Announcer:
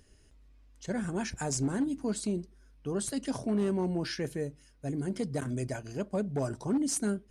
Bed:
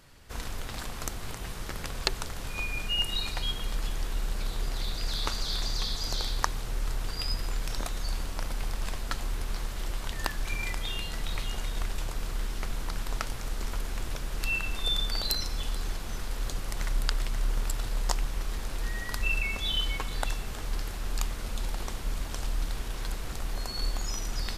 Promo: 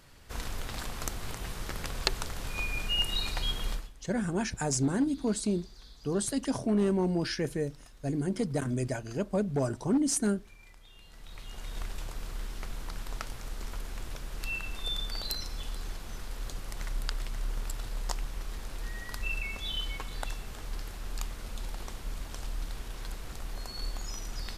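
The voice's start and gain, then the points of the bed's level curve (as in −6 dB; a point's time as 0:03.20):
3.20 s, +2.5 dB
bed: 0:03.73 −0.5 dB
0:03.93 −22.5 dB
0:10.90 −22.5 dB
0:11.76 −5.5 dB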